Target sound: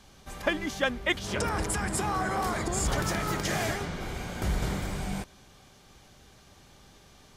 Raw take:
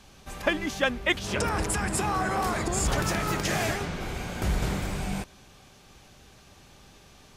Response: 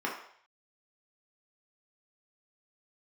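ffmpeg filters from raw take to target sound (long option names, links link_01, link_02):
-af "bandreject=frequency=2600:width=14,volume=-2dB"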